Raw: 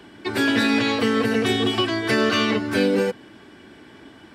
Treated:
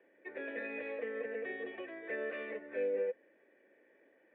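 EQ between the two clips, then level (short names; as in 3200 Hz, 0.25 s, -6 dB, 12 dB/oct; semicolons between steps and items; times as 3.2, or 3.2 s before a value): vocal tract filter e; HPF 340 Hz 12 dB/oct; -5.5 dB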